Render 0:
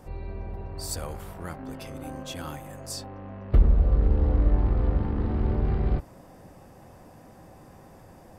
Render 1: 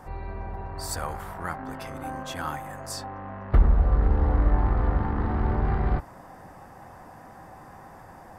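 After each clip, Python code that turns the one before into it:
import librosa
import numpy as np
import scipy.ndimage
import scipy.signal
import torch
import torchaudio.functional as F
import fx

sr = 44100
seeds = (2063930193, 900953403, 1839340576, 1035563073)

y = fx.band_shelf(x, sr, hz=1200.0, db=9.0, octaves=1.7)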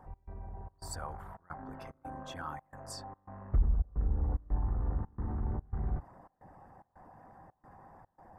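y = fx.envelope_sharpen(x, sr, power=1.5)
y = fx.step_gate(y, sr, bpm=110, pattern='x.xxx.xxx', floor_db=-24.0, edge_ms=4.5)
y = y * 10.0 ** (-9.0 / 20.0)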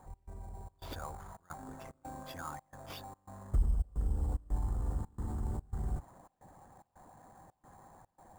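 y = fx.sample_hold(x, sr, seeds[0], rate_hz=8200.0, jitter_pct=0)
y = y * 10.0 ** (-2.0 / 20.0)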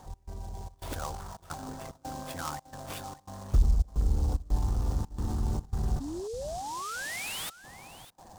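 y = fx.spec_paint(x, sr, seeds[1], shape='rise', start_s=6.0, length_s=1.5, low_hz=260.0, high_hz=3800.0, level_db=-43.0)
y = y + 10.0 ** (-16.0 / 20.0) * np.pad(y, (int(605 * sr / 1000.0), 0))[:len(y)]
y = fx.noise_mod_delay(y, sr, seeds[2], noise_hz=5800.0, depth_ms=0.053)
y = y * 10.0 ** (6.5 / 20.0)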